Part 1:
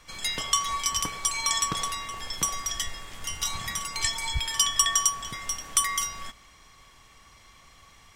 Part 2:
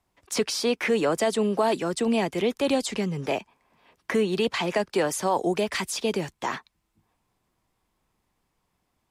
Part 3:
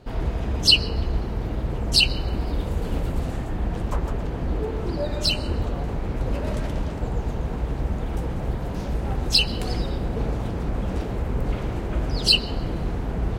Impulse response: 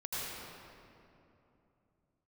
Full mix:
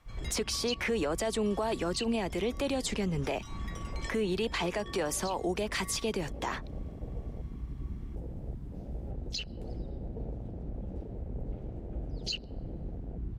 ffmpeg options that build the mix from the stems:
-filter_complex "[0:a]lowpass=f=1200:p=1,volume=0.422[s0];[1:a]alimiter=limit=0.141:level=0:latency=1:release=73,volume=1.19,asplit=2[s1][s2];[2:a]afwtdn=0.0631,volume=0.237[s3];[s2]apad=whole_len=359548[s4];[s0][s4]sidechaincompress=threshold=0.0447:ratio=8:attack=6.9:release=265[s5];[s5][s1][s3]amix=inputs=3:normalize=0,alimiter=limit=0.075:level=0:latency=1:release=275"

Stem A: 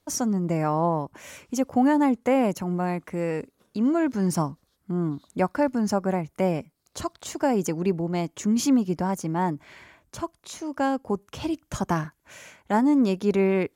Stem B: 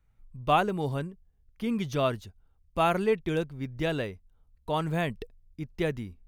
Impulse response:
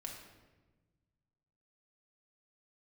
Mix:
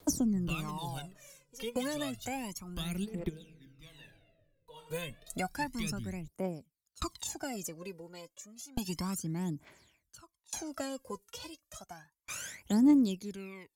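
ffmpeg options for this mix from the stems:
-filter_complex "[0:a]bass=f=250:g=-4,treble=f=4000:g=6,aeval=exprs='val(0)*pow(10,-34*if(lt(mod(0.57*n/s,1),2*abs(0.57)/1000),1-mod(0.57*n/s,1)/(2*abs(0.57)/1000),(mod(0.57*n/s,1)-2*abs(0.57)/1000)/(1-2*abs(0.57)/1000))/20)':c=same,volume=1.26,asplit=3[s0][s1][s2];[s0]atrim=end=3.24,asetpts=PTS-STARTPTS,afade=t=out:st=3.236:d=0.004:c=hsin[s3];[s1]atrim=start=3.24:end=4.74,asetpts=PTS-STARTPTS,volume=0[s4];[s2]atrim=start=4.74,asetpts=PTS-STARTPTS,afade=t=in:d=0.004:c=hsin[s5];[s3][s4][s5]concat=n=3:v=0:a=1,asplit=2[s6][s7];[1:a]acrossover=split=210|3000[s8][s9][s10];[s9]acompressor=threshold=0.00891:ratio=2.5[s11];[s8][s11][s10]amix=inputs=3:normalize=0,lowshelf=f=240:g=-10,volume=0.794,asplit=2[s12][s13];[s13]volume=0.158[s14];[s7]apad=whole_len=276748[s15];[s12][s15]sidechaingate=range=0.0224:threshold=0.00126:ratio=16:detection=peak[s16];[2:a]atrim=start_sample=2205[s17];[s14][s17]afir=irnorm=-1:irlink=0[s18];[s6][s16][s18]amix=inputs=3:normalize=0,highshelf=f=4100:g=6,acrossover=split=350|1600[s19][s20][s21];[s19]acompressor=threshold=0.0224:ratio=4[s22];[s20]acompressor=threshold=0.00398:ratio=4[s23];[s21]acompressor=threshold=0.00631:ratio=4[s24];[s22][s23][s24]amix=inputs=3:normalize=0,aphaser=in_gain=1:out_gain=1:delay=2.2:decay=0.79:speed=0.31:type=triangular"

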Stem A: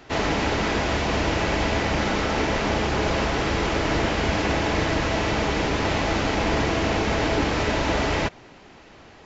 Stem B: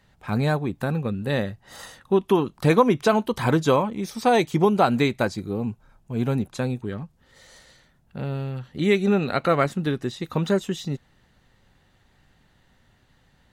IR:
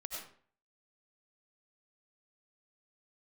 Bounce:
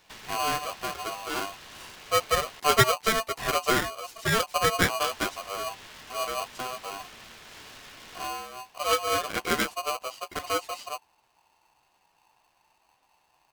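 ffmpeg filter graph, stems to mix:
-filter_complex "[0:a]acompressor=threshold=0.0398:ratio=12,highpass=1300,volume=0.376,asplit=3[s0][s1][s2];[s0]atrim=end=2.6,asetpts=PTS-STARTPTS,afade=t=out:st=2.596:d=0.004:c=hsin[s3];[s1]atrim=start=2.6:end=5.05,asetpts=PTS-STARTPTS,volume=0[s4];[s2]atrim=start=5.05,asetpts=PTS-STARTPTS,afade=t=in:d=0.004:c=hsin[s5];[s3][s4][s5]concat=n=3:v=0:a=1[s6];[1:a]aeval=exprs='0.531*(cos(1*acos(clip(val(0)/0.531,-1,1)))-cos(1*PI/2))+0.0376*(cos(2*acos(clip(val(0)/0.531,-1,1)))-cos(2*PI/2))+0.0841*(cos(3*acos(clip(val(0)/0.531,-1,1)))-cos(3*PI/2))':c=same,asplit=2[s7][s8];[s8]adelay=10.4,afreqshift=1.8[s9];[s7][s9]amix=inputs=2:normalize=1,volume=1.12[s10];[s6][s10]amix=inputs=2:normalize=0,aeval=exprs='val(0)*sgn(sin(2*PI*890*n/s))':c=same"

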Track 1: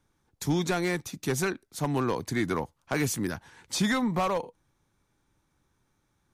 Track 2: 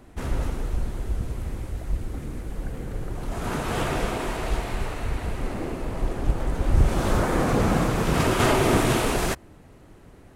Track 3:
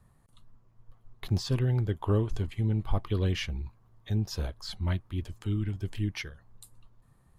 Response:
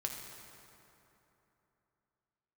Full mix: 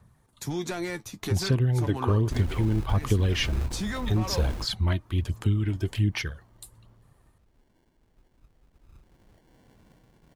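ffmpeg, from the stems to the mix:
-filter_complex "[0:a]flanger=delay=7.2:depth=2.8:regen=44:speed=0.37:shape=triangular,volume=1.26,asplit=2[s0][s1];[1:a]adynamicequalizer=threshold=0.01:dfrequency=520:dqfactor=1.4:tfrequency=520:tqfactor=1.4:attack=5:release=100:ratio=0.375:range=2.5:mode=cutabove:tftype=bell,acrusher=samples=35:mix=1:aa=0.000001,adelay=2150,volume=1[s2];[2:a]dynaudnorm=f=630:g=5:m=2.51,highpass=53,aphaser=in_gain=1:out_gain=1:delay=3.3:decay=0.46:speed=1.3:type=sinusoidal,volume=1.06[s3];[s1]apad=whole_len=551427[s4];[s2][s4]sidechaingate=range=0.0158:threshold=0.00126:ratio=16:detection=peak[s5];[s0][s5]amix=inputs=2:normalize=0,alimiter=limit=0.075:level=0:latency=1:release=70,volume=1[s6];[s3][s6]amix=inputs=2:normalize=0,acompressor=threshold=0.0891:ratio=3"

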